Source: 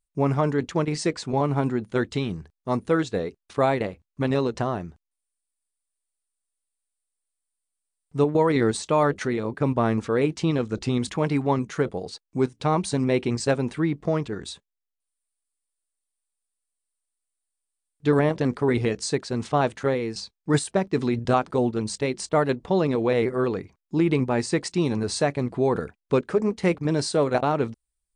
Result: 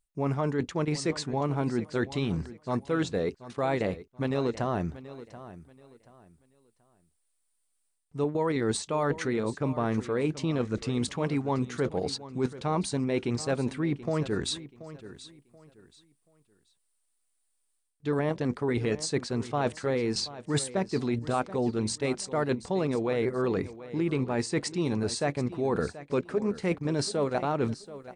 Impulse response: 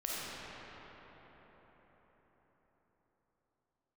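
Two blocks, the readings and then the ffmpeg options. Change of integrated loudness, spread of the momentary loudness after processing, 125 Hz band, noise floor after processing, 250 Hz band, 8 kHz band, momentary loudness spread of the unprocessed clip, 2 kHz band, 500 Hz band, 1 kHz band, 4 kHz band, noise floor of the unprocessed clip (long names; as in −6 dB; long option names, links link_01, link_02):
−5.0 dB, 5 LU, −4.5 dB, −75 dBFS, −4.5 dB, −2.0 dB, 7 LU, −5.0 dB, −5.5 dB, −6.5 dB, −1.5 dB, −84 dBFS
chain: -af "areverse,acompressor=threshold=-34dB:ratio=4,areverse,aecho=1:1:731|1462|2193:0.168|0.047|0.0132,volume=6.5dB"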